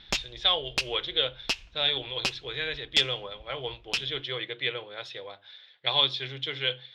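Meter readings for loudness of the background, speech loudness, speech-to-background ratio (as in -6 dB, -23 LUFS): -32.5 LUFS, -28.5 LUFS, 4.0 dB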